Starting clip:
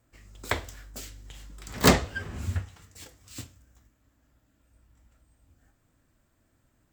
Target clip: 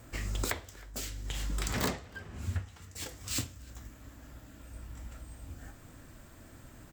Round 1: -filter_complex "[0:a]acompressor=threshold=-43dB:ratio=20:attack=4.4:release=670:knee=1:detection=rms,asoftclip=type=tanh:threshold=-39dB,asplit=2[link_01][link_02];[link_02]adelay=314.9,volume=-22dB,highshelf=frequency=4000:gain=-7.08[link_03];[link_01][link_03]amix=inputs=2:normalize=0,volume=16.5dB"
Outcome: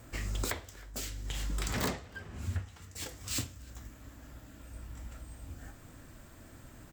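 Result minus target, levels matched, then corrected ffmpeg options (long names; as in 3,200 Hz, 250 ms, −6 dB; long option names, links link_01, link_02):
soft clipping: distortion +19 dB
-filter_complex "[0:a]acompressor=threshold=-43dB:ratio=20:attack=4.4:release=670:knee=1:detection=rms,asoftclip=type=tanh:threshold=-27dB,asplit=2[link_01][link_02];[link_02]adelay=314.9,volume=-22dB,highshelf=frequency=4000:gain=-7.08[link_03];[link_01][link_03]amix=inputs=2:normalize=0,volume=16.5dB"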